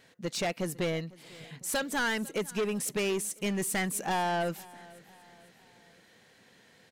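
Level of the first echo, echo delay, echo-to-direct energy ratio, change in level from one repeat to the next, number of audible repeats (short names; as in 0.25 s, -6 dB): -22.0 dB, 0.5 s, -21.0 dB, -7.0 dB, 2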